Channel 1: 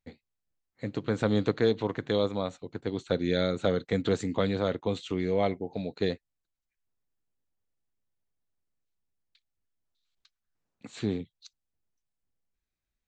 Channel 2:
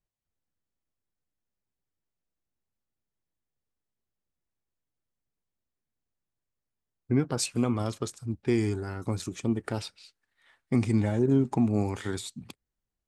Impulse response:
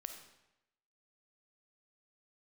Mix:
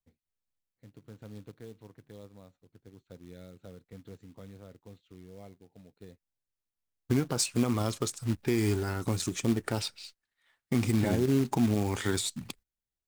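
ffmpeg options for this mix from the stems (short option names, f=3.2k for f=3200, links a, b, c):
-filter_complex "[0:a]aemphasis=mode=reproduction:type=bsi,volume=-1.5dB[a];[1:a]agate=range=-12dB:threshold=-57dB:ratio=16:detection=peak,highshelf=f=2.4k:g=5,volume=2.5dB,asplit=2[b][c];[c]apad=whole_len=576706[d];[a][d]sidechaingate=range=-24dB:threshold=-50dB:ratio=16:detection=peak[e];[e][b]amix=inputs=2:normalize=0,acrusher=bits=4:mode=log:mix=0:aa=0.000001,alimiter=limit=-17dB:level=0:latency=1:release=184"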